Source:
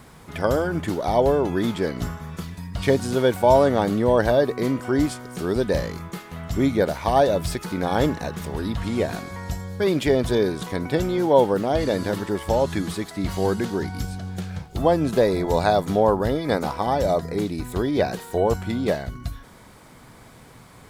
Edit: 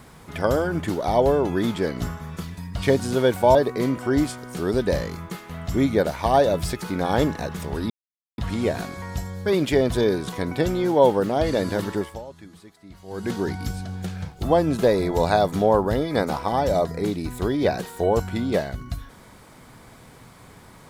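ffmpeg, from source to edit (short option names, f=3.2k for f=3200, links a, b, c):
-filter_complex "[0:a]asplit=5[a][b][c][d][e];[a]atrim=end=3.552[f];[b]atrim=start=4.368:end=8.72,asetpts=PTS-STARTPTS,afade=t=out:st=4.348:d=0.004:c=hsin,apad=pad_dur=0.48[g];[c]atrim=start=8.72:end=12.61,asetpts=PTS-STARTPTS,afade=t=in:d=0.004:c=hsin,afade=t=out:st=3.61:d=0.28:c=qua:silence=0.112202[h];[d]atrim=start=12.61:end=13.37,asetpts=PTS-STARTPTS,volume=-19dB[i];[e]atrim=start=13.37,asetpts=PTS-STARTPTS,afade=t=in:d=0.28:c=qua:silence=0.112202[j];[g][h][i][j]concat=n=4:v=0:a=1[k];[f][k]acrossfade=d=0.004:c1=hsin:c2=hsin"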